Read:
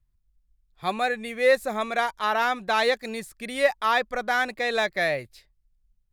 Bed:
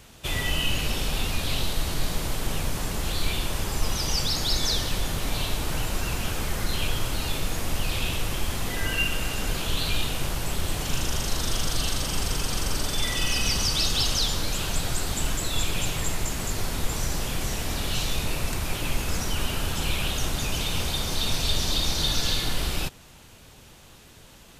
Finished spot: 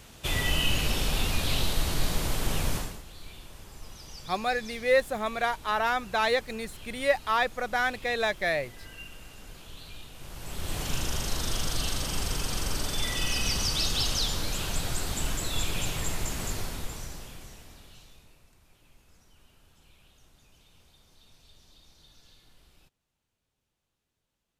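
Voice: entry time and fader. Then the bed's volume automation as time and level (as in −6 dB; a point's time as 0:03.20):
3.45 s, −3.0 dB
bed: 0:02.76 −0.5 dB
0:03.05 −19 dB
0:10.12 −19 dB
0:10.77 −3.5 dB
0:16.50 −3.5 dB
0:18.49 −33 dB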